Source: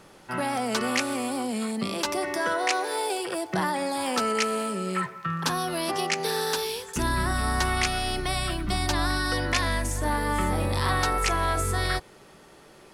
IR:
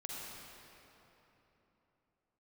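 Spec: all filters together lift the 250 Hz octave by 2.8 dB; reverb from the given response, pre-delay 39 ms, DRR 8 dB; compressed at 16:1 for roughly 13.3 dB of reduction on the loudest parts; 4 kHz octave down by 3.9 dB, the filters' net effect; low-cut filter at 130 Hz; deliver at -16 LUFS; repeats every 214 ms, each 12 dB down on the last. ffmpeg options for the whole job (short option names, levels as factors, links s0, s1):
-filter_complex "[0:a]highpass=130,equalizer=f=250:t=o:g=4,equalizer=f=4000:t=o:g=-5,acompressor=threshold=0.0178:ratio=16,aecho=1:1:214|428|642:0.251|0.0628|0.0157,asplit=2[s0][s1];[1:a]atrim=start_sample=2205,adelay=39[s2];[s1][s2]afir=irnorm=-1:irlink=0,volume=0.422[s3];[s0][s3]amix=inputs=2:normalize=0,volume=12.6"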